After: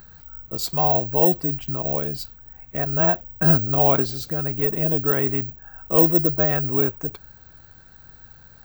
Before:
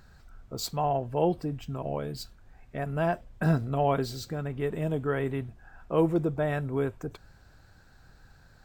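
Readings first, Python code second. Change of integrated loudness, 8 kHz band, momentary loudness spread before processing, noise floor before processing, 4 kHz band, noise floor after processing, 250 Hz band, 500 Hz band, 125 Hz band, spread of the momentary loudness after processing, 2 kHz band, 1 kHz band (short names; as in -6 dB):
+10.5 dB, n/a, 13 LU, -57 dBFS, +5.0 dB, -49 dBFS, +5.0 dB, +5.0 dB, +5.0 dB, 13 LU, +5.0 dB, +5.0 dB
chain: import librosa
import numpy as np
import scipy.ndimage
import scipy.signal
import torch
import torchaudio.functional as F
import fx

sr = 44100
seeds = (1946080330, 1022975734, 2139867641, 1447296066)

y = (np.kron(scipy.signal.resample_poly(x, 1, 2), np.eye(2)[0]) * 2)[:len(x)]
y = F.gain(torch.from_numpy(y), 5.0).numpy()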